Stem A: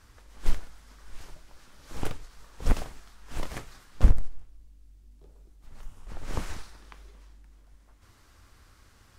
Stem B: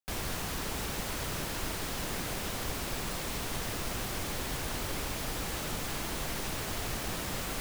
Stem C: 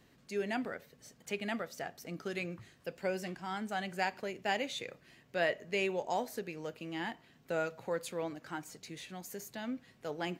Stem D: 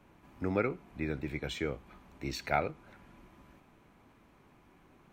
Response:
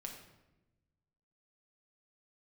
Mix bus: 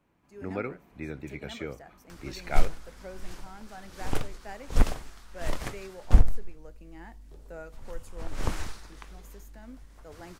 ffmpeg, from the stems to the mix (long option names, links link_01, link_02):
-filter_complex "[0:a]acompressor=mode=upward:threshold=-45dB:ratio=2.5,adelay=2100,volume=-5.5dB[link_01];[2:a]equalizer=frequency=3300:width_type=o:width=0.8:gain=-14,volume=-16.5dB[link_02];[3:a]volume=-10.5dB[link_03];[link_01][link_02][link_03]amix=inputs=3:normalize=0,dynaudnorm=framelen=250:gausssize=3:maxgain=8dB"